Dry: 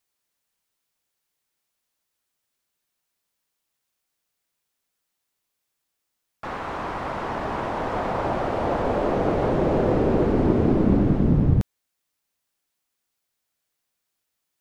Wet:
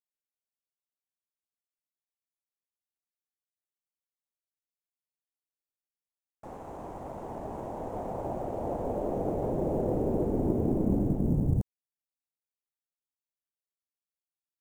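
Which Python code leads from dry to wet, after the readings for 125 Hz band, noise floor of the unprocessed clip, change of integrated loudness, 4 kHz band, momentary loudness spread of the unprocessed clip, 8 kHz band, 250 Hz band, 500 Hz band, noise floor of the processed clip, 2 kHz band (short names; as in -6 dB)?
-8.0 dB, -80 dBFS, -8.0 dB, under -20 dB, 11 LU, n/a, -8.0 dB, -8.0 dB, under -85 dBFS, -23.5 dB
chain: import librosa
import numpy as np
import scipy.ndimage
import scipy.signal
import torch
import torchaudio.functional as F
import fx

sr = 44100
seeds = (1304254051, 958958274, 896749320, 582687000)

y = fx.law_mismatch(x, sr, coded='A')
y = fx.band_shelf(y, sr, hz=2400.0, db=-15.5, octaves=2.5)
y = y * librosa.db_to_amplitude(-7.5)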